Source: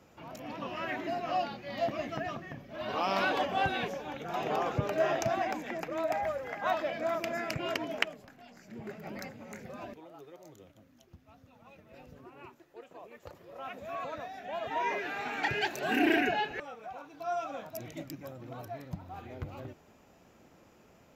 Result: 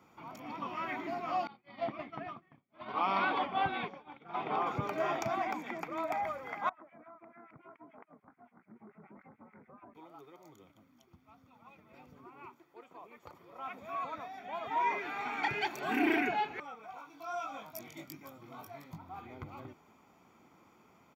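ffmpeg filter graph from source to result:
-filter_complex "[0:a]asettb=1/sr,asplit=3[a][b][c];[a]atrim=end=1.474[d];[b]atrim=start=1.47:end=4.67,asetpts=PTS-STARTPTS,afade=t=in:d=0.004:c=qsin,afade=t=out:st=3.196:d=0.004:c=qsin,lowpass=f=4.2k:w=0.5412,lowpass=f=4.2k:w=1.3066,agate=range=-33dB:threshold=-33dB:ratio=3:release=100:detection=peak[e];[c]atrim=start=4.666[f];[d][e]acrossfade=d=0.004:c1=hsin:c2=qsin[g];[g][f]acrossfade=d=0.004:c1=qsin:c2=hsin,asettb=1/sr,asplit=3[h][i][j];[h]atrim=end=6.694[k];[i]atrim=start=6.69:end=9.95,asetpts=PTS-STARTPTS,afade=t=in:d=0.004:c=qsin,afade=t=out:st=3.256:d=0.004:c=qsin,acrossover=split=1800[l][m];[l]aeval=exprs='val(0)*(1-1/2+1/2*cos(2*PI*6.9*n/s))':c=same[n];[m]aeval=exprs='val(0)*(1-1/2-1/2*cos(2*PI*6.9*n/s))':c=same[o];[n][o]amix=inputs=2:normalize=0,acompressor=threshold=-46dB:ratio=20:attack=3.2:release=140:knee=1:detection=peak,lowpass=f=1.7k:w=0.5412,lowpass=f=1.7k:w=1.3066[p];[j]atrim=start=9.946[q];[k][p]acrossfade=d=0.004:c1=hsin:c2=qsin[r];[r][q]acrossfade=d=0.004:c1=qsin:c2=hsin,asettb=1/sr,asplit=3[s][t][u];[s]atrim=end=16.864[v];[t]atrim=start=16.86:end=18.98,asetpts=PTS-STARTPTS,afade=t=in:d=0.004:c=qsin,afade=t=out:st=2.116:d=0.004:c=qsin,highshelf=f=2.6k:g=8.5,flanger=delay=18.5:depth=2.7:speed=1.4[w];[u]atrim=start=18.976[x];[v][w]acrossfade=d=0.004:c1=hsin:c2=qsin[y];[y][x]acrossfade=d=0.004:c1=qsin:c2=hsin,highpass=f=390:p=1,equalizer=f=7.9k:w=0.31:g=-8.5,aecho=1:1:0.9:0.58,volume=1dB"

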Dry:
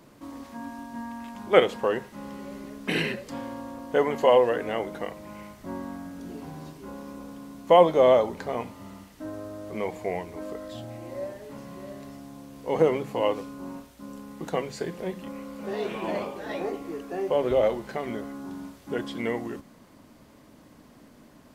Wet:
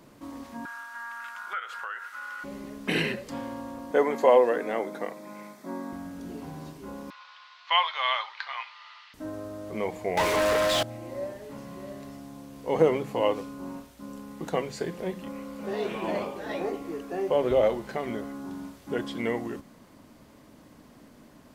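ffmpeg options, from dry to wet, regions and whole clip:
-filter_complex "[0:a]asettb=1/sr,asplit=3[a][b][c];[a]atrim=end=0.654[d];[b]atrim=start=0.65:end=2.44,asetpts=PTS-STARTPTS,afade=t=in:d=0.004:c=qsin,afade=t=out:st=1.786:d=0.004:c=qsin,highpass=f=1.4k:t=q:w=15,acompressor=threshold=-34dB:ratio=4:attack=3.2:release=140:knee=1:detection=peak[e];[c]atrim=start=2.436[f];[d][e]acrossfade=d=0.004:c1=hsin:c2=qsin[g];[g][f]acrossfade=d=0.004:c1=qsin:c2=hsin,asettb=1/sr,asplit=3[h][i][j];[h]atrim=end=3.914[k];[i]atrim=start=3.91:end=5.93,asetpts=PTS-STARTPTS,afade=t=in:d=0.004:c=qsin,afade=t=out:st=2.016:d=0.004:c=qsin,highpass=f=190:w=0.5412,highpass=f=190:w=1.3066,bandreject=f=2.9k:w=5.7[l];[j]atrim=start=5.926[m];[k][l]acrossfade=d=0.004:c1=hsin:c2=qsin[n];[n][m]acrossfade=d=0.004:c1=qsin:c2=hsin,asettb=1/sr,asplit=3[o][p][q];[o]atrim=end=7.104[r];[p]atrim=start=7.1:end=9.14,asetpts=PTS-STARTPTS,afade=t=in:d=0.004:c=qsin,afade=t=out:st=2.036:d=0.004:c=qsin,asuperpass=centerf=2200:order=8:qfactor=0.6,equalizer=f=3.4k:t=o:w=2.7:g=9[s];[q]atrim=start=9.136[t];[r][s]acrossfade=d=0.004:c1=hsin:c2=qsin[u];[u][t]acrossfade=d=0.004:c1=qsin:c2=hsin,asettb=1/sr,asplit=3[v][w][x];[v]atrim=end=10.174[y];[w]atrim=start=10.17:end=10.83,asetpts=PTS-STARTPTS,afade=t=in:d=0.004:c=qsin,afade=t=out:st=0.656:d=0.004:c=qsin,equalizer=f=230:t=o:w=2.2:g=-9.5,acontrast=72,asplit=2[z][aa];[aa]highpass=f=720:p=1,volume=32dB,asoftclip=type=tanh:threshold=-16.5dB[ab];[z][ab]amix=inputs=2:normalize=0,lowpass=f=4.9k:p=1,volume=-6dB[ac];[x]atrim=start=10.826[ad];[y][ac]acrossfade=d=0.004:c1=hsin:c2=qsin[ae];[ae][ad]acrossfade=d=0.004:c1=qsin:c2=hsin"

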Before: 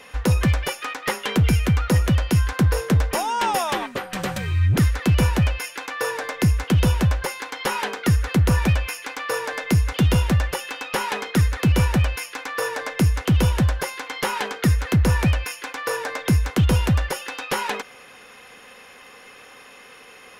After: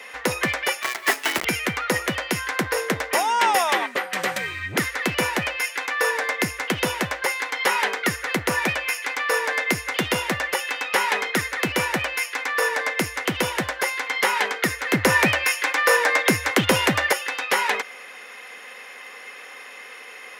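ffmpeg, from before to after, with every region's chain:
-filter_complex "[0:a]asettb=1/sr,asplit=3[a][b][c];[a]atrim=end=0.824[d];[b]atrim=start=0.82:end=1.45,asetpts=PTS-STARTPTS,afade=t=in:d=0.004:c=qsin,afade=t=out:st=0.626:d=0.004:c=qsin,lowshelf=f=250:g=-7,afreqshift=-130,acrusher=bits=5:dc=4:mix=0:aa=0.000001[e];[c]atrim=start=1.446[f];[d][e]acrossfade=d=0.004:c1=hsin:c2=qsin[g];[g][f]acrossfade=d=0.004:c1=qsin:c2=hsin,asettb=1/sr,asplit=3[h][i][j];[h]atrim=end=14.934[k];[i]atrim=start=14.93:end=17.13,asetpts=PTS-STARTPTS,afade=t=in:d=0.004:c=qsin,afade=t=out:st=2.196:d=0.004:c=qsin,acontrast=22,afreqshift=19[l];[j]atrim=start=17.126[m];[k][l]acrossfade=d=0.004:c1=hsin:c2=qsin[n];[n][m]acrossfade=d=0.004:c1=qsin:c2=hsin,highpass=370,equalizer=f=2k:t=o:w=0.42:g=7.5,volume=2.5dB"

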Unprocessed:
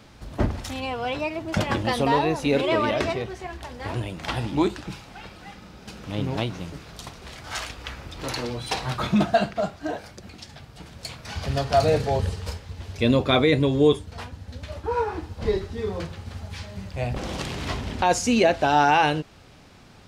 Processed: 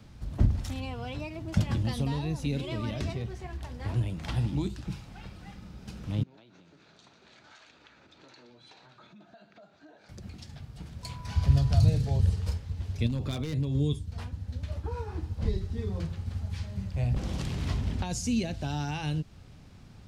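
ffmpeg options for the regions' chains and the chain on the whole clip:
-filter_complex "[0:a]asettb=1/sr,asplit=3[a][b][c];[a]atrim=end=6.234[d];[b]atrim=start=6.23:end=10.09,asetpts=PTS-STARTPTS,afade=t=in:d=0.004:c=qsin,afade=t=out:st=3.856:d=0.004:c=qsin,acompressor=threshold=-36dB:ratio=10:attack=3.2:release=140:knee=1:detection=peak,highpass=440,equalizer=f=490:t=q:w=4:g=-6,equalizer=f=750:t=q:w=4:g=-6,equalizer=f=1.1k:t=q:w=4:g=-8,equalizer=f=2k:t=q:w=4:g=-6,equalizer=f=3k:t=q:w=4:g=-7,equalizer=f=5.2k:t=q:w=4:g=-10,lowpass=f=5.6k:w=0.5412,lowpass=f=5.6k:w=1.3066[e];[c]atrim=start=10.086[f];[d][e]acrossfade=d=0.004:c1=hsin:c2=qsin[g];[g][f]acrossfade=d=0.004:c1=qsin:c2=hsin,asettb=1/sr,asplit=3[h][i][j];[h]atrim=end=11.034[k];[i]atrim=start=11.03:end=11.89,asetpts=PTS-STARTPTS,afade=t=in:d=0.004:c=qsin,afade=t=out:st=0.856:d=0.004:c=qsin,asubboost=boost=6.5:cutoff=190,aeval=exprs='val(0)+0.0126*sin(2*PI*990*n/s)':c=same[l];[j]atrim=start=11.886[m];[k][l]acrossfade=d=0.004:c1=hsin:c2=qsin[n];[n][m]acrossfade=d=0.004:c1=qsin:c2=hsin,asettb=1/sr,asplit=3[o][p][q];[o]atrim=end=13.064[r];[p]atrim=start=13.06:end=13.75,asetpts=PTS-STARTPTS,afade=t=in:d=0.004:c=qsin,afade=t=out:st=0.686:d=0.004:c=qsin,aeval=exprs='0.237*(abs(mod(val(0)/0.237+3,4)-2)-1)':c=same,acompressor=threshold=-23dB:ratio=5:attack=3.2:release=140:knee=1:detection=peak[s];[q]atrim=start=13.746[t];[r][s]acrossfade=d=0.004:c1=hsin:c2=qsin[u];[u][t]acrossfade=d=0.004:c1=qsin:c2=hsin,bass=f=250:g=12,treble=f=4k:g=2,acrossover=split=240|3000[v][w][x];[w]acompressor=threshold=-29dB:ratio=6[y];[v][y][x]amix=inputs=3:normalize=0,volume=-9dB"

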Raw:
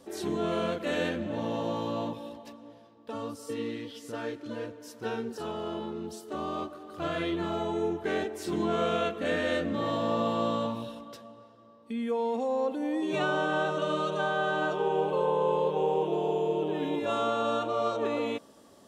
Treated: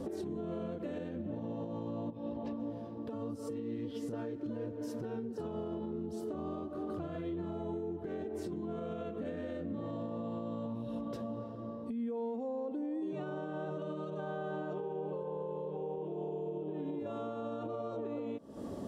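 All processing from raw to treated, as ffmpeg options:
-filter_complex "[0:a]asettb=1/sr,asplit=3[a][b][c];[a]atrim=end=2.104[d];[b]atrim=start=2.1:end=2.6,asetpts=PTS-STARTPTS,afade=t=in:d=0.004:c=qsin,afade=t=out:st=0.496:d=0.004:c=qsin,lowpass=4.4k,acompressor=threshold=-42dB:ratio=6:attack=3.2:release=140:knee=1:detection=peak[e];[c]atrim=start=2.596[f];[d][e]acrossfade=d=0.004:c1=hsin:c2=qsin[g];[g][f]acrossfade=d=0.004:c1=qsin:c2=hsin,tiltshelf=f=790:g=10,acompressor=threshold=-38dB:ratio=10,alimiter=level_in=16.5dB:limit=-24dB:level=0:latency=1:release=285,volume=-16.5dB,volume=9.5dB"

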